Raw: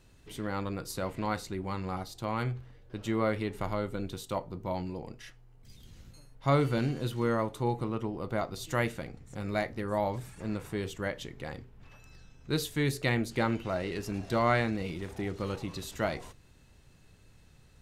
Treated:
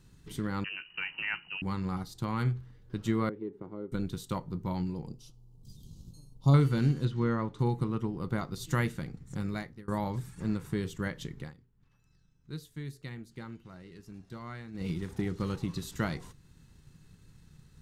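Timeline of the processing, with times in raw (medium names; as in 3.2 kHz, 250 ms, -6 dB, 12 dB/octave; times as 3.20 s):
0.64–1.62 s: frequency inversion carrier 2.9 kHz
3.29–3.92 s: band-pass filter 380 Hz, Q 2.3
5.07–6.54 s: Butterworth band-stop 1.8 kHz, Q 0.66
7.05–7.59 s: distance through air 120 m
9.40–9.88 s: fade out, to -22 dB
11.38–14.89 s: dip -15.5 dB, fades 0.16 s
whole clip: fifteen-band graphic EQ 160 Hz +8 dB, 630 Hz -11 dB, 2.5 kHz -5 dB; transient shaper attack +3 dB, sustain -2 dB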